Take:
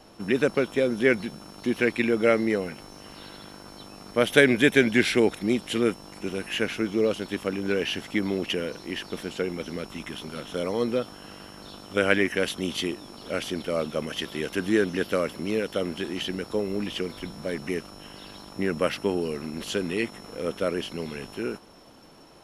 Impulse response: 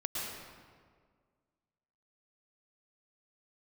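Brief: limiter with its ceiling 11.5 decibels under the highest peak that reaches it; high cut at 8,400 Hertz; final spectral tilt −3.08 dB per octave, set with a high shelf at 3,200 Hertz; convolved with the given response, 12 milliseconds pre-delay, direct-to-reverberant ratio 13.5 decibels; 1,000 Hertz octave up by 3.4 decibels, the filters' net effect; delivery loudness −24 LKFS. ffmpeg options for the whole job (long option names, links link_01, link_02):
-filter_complex "[0:a]lowpass=8400,equalizer=frequency=1000:width_type=o:gain=4,highshelf=frequency=3200:gain=5.5,alimiter=limit=-11dB:level=0:latency=1,asplit=2[link_01][link_02];[1:a]atrim=start_sample=2205,adelay=12[link_03];[link_02][link_03]afir=irnorm=-1:irlink=0,volume=-17dB[link_04];[link_01][link_04]amix=inputs=2:normalize=0,volume=3dB"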